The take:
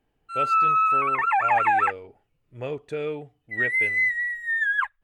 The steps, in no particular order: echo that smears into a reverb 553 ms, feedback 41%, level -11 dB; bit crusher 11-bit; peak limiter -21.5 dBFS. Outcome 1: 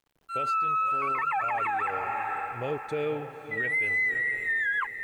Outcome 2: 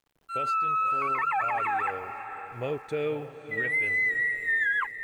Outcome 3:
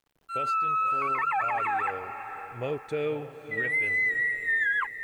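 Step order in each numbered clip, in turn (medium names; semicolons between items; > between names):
echo that smears into a reverb > peak limiter > bit crusher; peak limiter > bit crusher > echo that smears into a reverb; peak limiter > echo that smears into a reverb > bit crusher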